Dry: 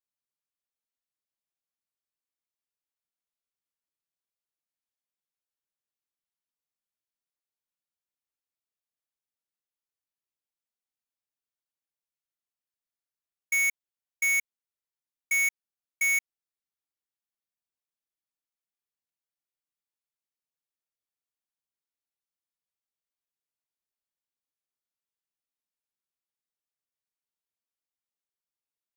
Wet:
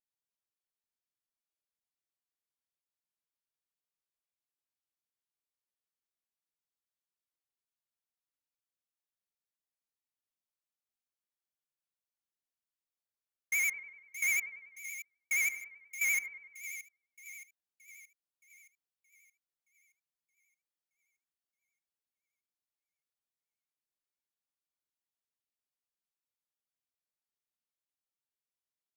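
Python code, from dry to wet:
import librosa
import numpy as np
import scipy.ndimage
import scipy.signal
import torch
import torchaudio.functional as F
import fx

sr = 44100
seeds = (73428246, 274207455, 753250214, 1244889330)

y = fx.vibrato(x, sr, rate_hz=11.0, depth_cents=80.0)
y = fx.echo_split(y, sr, split_hz=2200.0, low_ms=98, high_ms=622, feedback_pct=52, wet_db=-11.0)
y = F.gain(torch.from_numpy(y), -5.5).numpy()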